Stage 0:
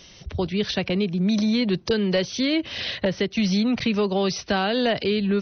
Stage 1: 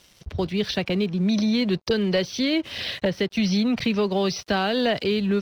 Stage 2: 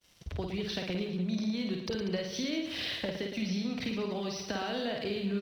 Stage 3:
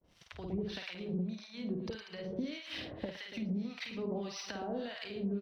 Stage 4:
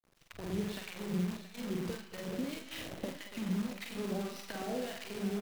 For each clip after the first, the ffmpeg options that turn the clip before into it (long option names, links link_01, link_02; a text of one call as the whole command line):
ffmpeg -i in.wav -af "aeval=exprs='sgn(val(0))*max(abs(val(0))-0.00398,0)':channel_layout=same" out.wav
ffmpeg -i in.wav -filter_complex "[0:a]agate=range=-33dB:threshold=-50dB:ratio=3:detection=peak,acompressor=threshold=-28dB:ratio=6,asplit=2[link_01][link_02];[link_02]aecho=0:1:50|112.5|190.6|288.3|410.4:0.631|0.398|0.251|0.158|0.1[link_03];[link_01][link_03]amix=inputs=2:normalize=0,volume=-5dB" out.wav
ffmpeg -i in.wav -filter_complex "[0:a]lowpass=frequency=3000:poles=1,acompressor=threshold=-37dB:ratio=6,acrossover=split=920[link_01][link_02];[link_01]aeval=exprs='val(0)*(1-1/2+1/2*cos(2*PI*1.7*n/s))':channel_layout=same[link_03];[link_02]aeval=exprs='val(0)*(1-1/2-1/2*cos(2*PI*1.7*n/s))':channel_layout=same[link_04];[link_03][link_04]amix=inputs=2:normalize=0,volume=5.5dB" out.wav
ffmpeg -i in.wav -filter_complex "[0:a]highshelf=frequency=3300:gain=-7.5,acrusher=bits=8:dc=4:mix=0:aa=0.000001,asplit=2[link_01][link_02];[link_02]aecho=0:1:44|226|674:0.422|0.119|0.224[link_03];[link_01][link_03]amix=inputs=2:normalize=0" out.wav